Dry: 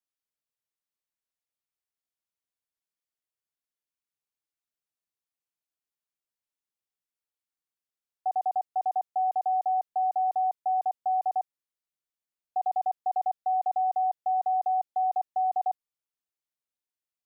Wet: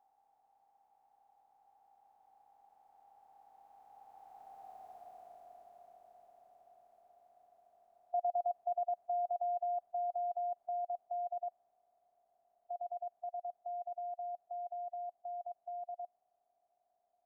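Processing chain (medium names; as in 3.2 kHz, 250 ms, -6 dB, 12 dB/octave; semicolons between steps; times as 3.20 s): spectral levelling over time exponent 0.4; Doppler pass-by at 4.82 s, 21 m/s, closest 11 m; trim +9 dB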